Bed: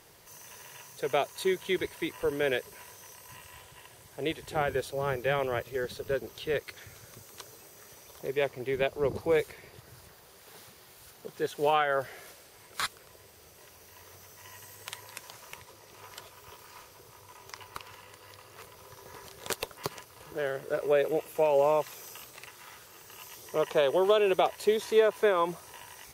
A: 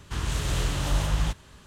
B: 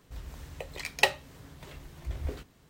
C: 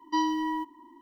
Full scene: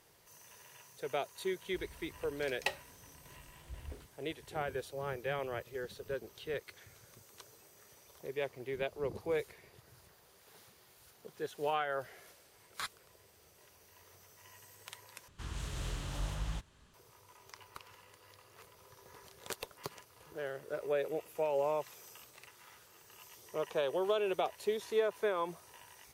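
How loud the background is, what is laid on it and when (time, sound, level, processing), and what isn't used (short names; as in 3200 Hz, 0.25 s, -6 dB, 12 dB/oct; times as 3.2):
bed -8.5 dB
1.63 add B -12 dB
15.28 replace with A -13 dB
not used: C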